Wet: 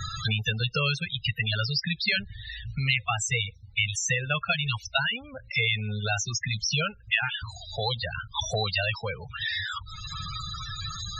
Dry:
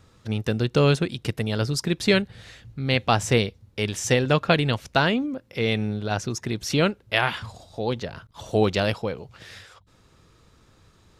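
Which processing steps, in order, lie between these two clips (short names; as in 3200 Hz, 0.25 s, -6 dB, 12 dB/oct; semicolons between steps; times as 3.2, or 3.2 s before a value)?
passive tone stack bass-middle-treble 10-0-10; loudest bins only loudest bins 16; three-band squash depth 100%; gain +8.5 dB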